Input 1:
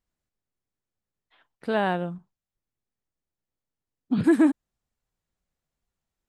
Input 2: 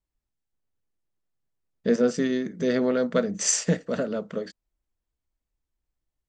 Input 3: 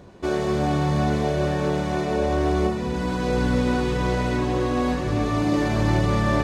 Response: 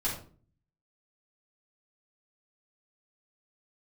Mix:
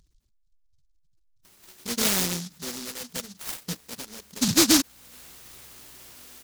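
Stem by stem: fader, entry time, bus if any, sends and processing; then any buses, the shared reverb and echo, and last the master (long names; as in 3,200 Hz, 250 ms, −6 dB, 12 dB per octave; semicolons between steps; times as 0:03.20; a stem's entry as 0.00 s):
0.0 dB, 0.30 s, no send, no echo send, downward expander −58 dBFS
−10.0 dB, 0.00 s, no send, no echo send, reverb reduction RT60 1.8 s
−10.0 dB, 1.45 s, no send, echo send −7.5 dB, noise that follows the level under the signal 20 dB; first-order pre-emphasis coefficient 0.97; automatic ducking −22 dB, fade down 0.20 s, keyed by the second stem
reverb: not used
echo: repeating echo 96 ms, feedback 53%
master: gate on every frequency bin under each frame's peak −20 dB strong; upward compression, threshold −40 dBFS; short delay modulated by noise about 5,100 Hz, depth 0.48 ms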